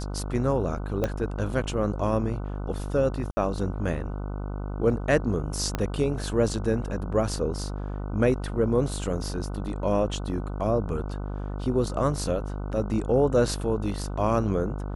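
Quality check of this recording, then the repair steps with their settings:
buzz 50 Hz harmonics 30 -32 dBFS
1.04 s: pop -13 dBFS
3.31–3.37 s: dropout 60 ms
5.75 s: pop -12 dBFS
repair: de-click; de-hum 50 Hz, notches 30; interpolate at 3.31 s, 60 ms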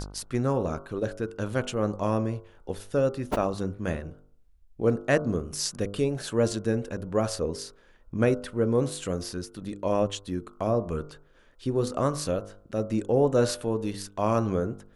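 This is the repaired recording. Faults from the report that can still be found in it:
1.04 s: pop
5.75 s: pop

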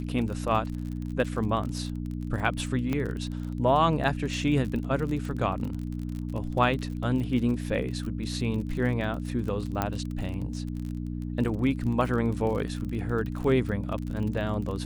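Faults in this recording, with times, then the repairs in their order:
crackle 36 per s -33 dBFS
hum 60 Hz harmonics 5 -33 dBFS
2.93 s: pop -17 dBFS
9.82 s: pop -12 dBFS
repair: de-click; de-hum 60 Hz, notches 5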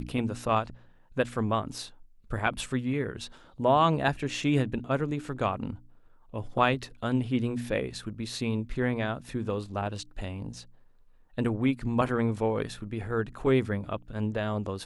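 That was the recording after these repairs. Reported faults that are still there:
nothing left

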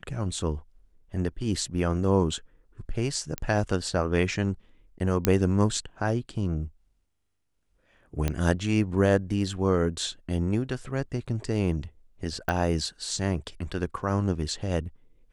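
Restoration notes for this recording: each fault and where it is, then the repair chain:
3.38 s: pop -14 dBFS
5.25 s: pop -5 dBFS
8.28 s: pop -12 dBFS
12.49 s: pop -15 dBFS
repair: de-click

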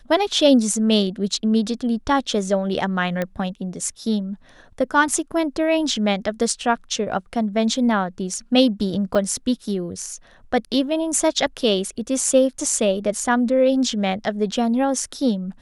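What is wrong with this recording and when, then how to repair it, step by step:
3.22 s: pop -11 dBFS
9.15 s: dropout 4.2 ms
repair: de-click; interpolate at 9.15 s, 4.2 ms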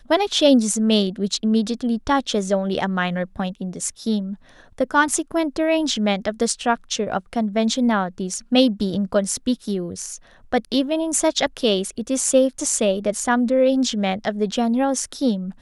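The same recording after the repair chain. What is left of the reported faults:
nothing left

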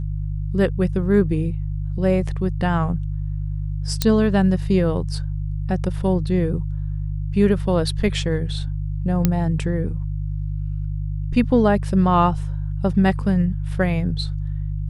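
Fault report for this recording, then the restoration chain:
hum 50 Hz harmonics 3 -25 dBFS
4.02 s: pop -5 dBFS
9.25 s: pop -4 dBFS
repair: de-click; de-hum 50 Hz, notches 3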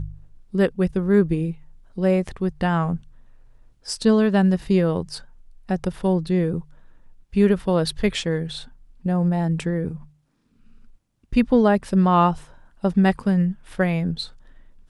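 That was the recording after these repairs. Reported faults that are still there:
nothing left

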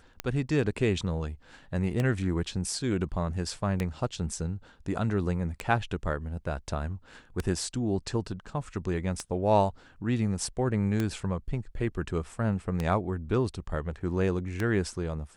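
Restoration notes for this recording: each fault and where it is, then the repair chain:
tick 33 1/3 rpm -15 dBFS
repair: de-click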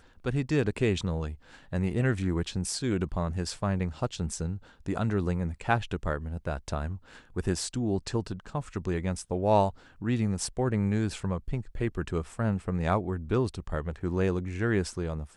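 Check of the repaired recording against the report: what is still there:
nothing left

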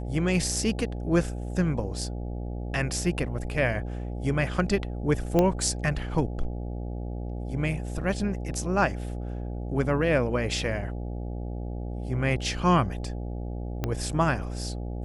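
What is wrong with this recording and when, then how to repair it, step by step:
buzz 60 Hz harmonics 14 -33 dBFS
5.39 s: pop -10 dBFS
13.84 s: pop -14 dBFS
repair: de-click; de-hum 60 Hz, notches 14

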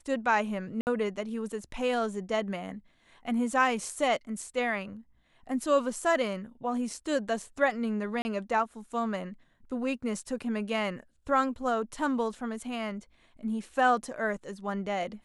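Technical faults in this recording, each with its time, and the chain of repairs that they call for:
0.81–0.87 s: dropout 59 ms
8.22–8.25 s: dropout 30 ms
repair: interpolate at 0.81 s, 59 ms; interpolate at 8.22 s, 30 ms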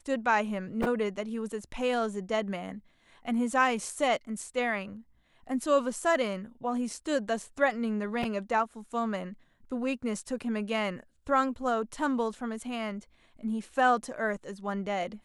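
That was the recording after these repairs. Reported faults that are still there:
nothing left

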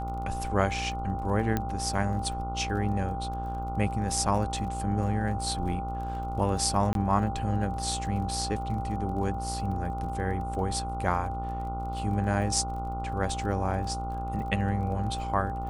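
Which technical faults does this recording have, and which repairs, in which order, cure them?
buzz 60 Hz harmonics 24 -35 dBFS
crackle 27 per s -39 dBFS
whine 790 Hz -34 dBFS
1.57 s: pop -14 dBFS
6.93–6.95 s: dropout 22 ms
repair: de-click; de-hum 60 Hz, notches 24; band-stop 790 Hz, Q 30; interpolate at 6.93 s, 22 ms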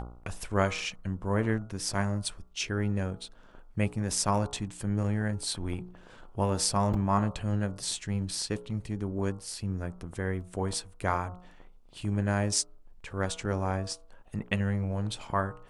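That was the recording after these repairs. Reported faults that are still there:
nothing left

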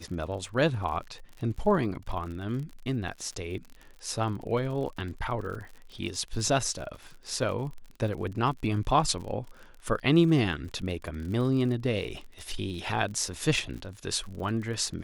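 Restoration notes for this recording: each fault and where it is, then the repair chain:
crackle 50 per s -37 dBFS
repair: de-click

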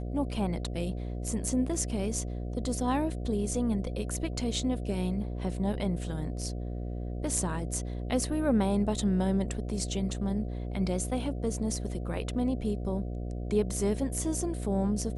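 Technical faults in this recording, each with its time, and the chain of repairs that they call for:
buzz 60 Hz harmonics 12 -35 dBFS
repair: de-hum 60 Hz, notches 12

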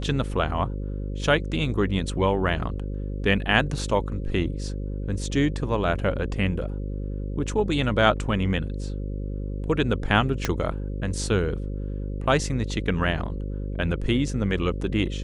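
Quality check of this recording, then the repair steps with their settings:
buzz 50 Hz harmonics 11 -30 dBFS
10.45 s: pop -8 dBFS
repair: de-click; de-hum 50 Hz, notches 11

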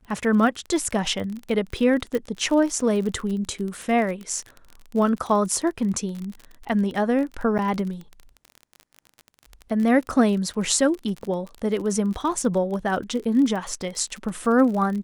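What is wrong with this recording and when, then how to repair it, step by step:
crackle 34 per s -29 dBFS
2.15 s: pop
7.58–7.59 s: dropout 8.5 ms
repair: de-click; interpolate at 7.58 s, 8.5 ms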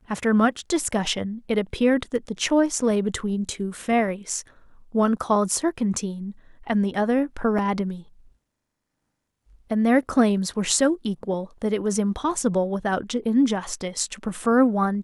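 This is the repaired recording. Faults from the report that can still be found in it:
2.15 s: pop

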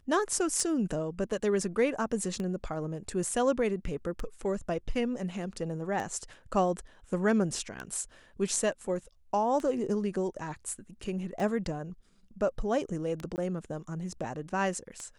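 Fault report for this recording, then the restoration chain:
tick 33 1/3 rpm -23 dBFS
13.36–13.38 s: dropout 19 ms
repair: de-click; interpolate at 13.36 s, 19 ms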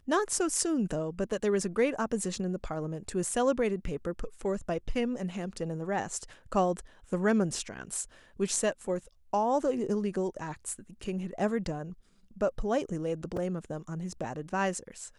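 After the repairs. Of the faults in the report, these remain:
nothing left

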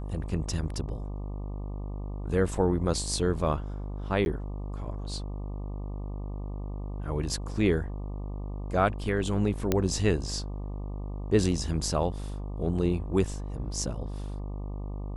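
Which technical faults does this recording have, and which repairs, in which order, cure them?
buzz 50 Hz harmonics 24 -35 dBFS
4.25–4.26 s: dropout 11 ms
9.72 s: pop -10 dBFS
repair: de-click; de-hum 50 Hz, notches 24; interpolate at 4.25 s, 11 ms

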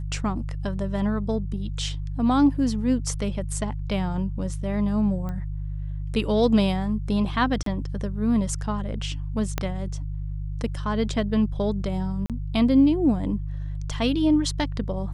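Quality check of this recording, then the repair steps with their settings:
hum 50 Hz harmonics 3 -30 dBFS
5.29 s: pop -22 dBFS
7.63–7.66 s: dropout 33 ms
9.58 s: pop -10 dBFS
12.26–12.30 s: dropout 37 ms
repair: de-click; de-hum 50 Hz, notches 3; interpolate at 7.63 s, 33 ms; interpolate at 12.26 s, 37 ms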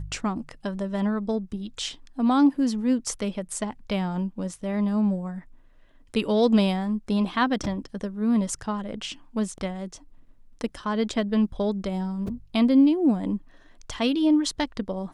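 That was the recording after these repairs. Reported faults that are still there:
9.58 s: pop

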